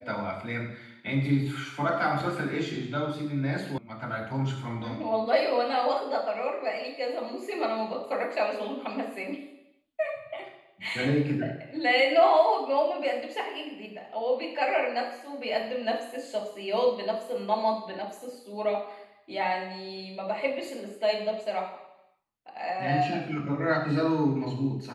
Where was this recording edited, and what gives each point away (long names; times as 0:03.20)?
0:03.78: cut off before it has died away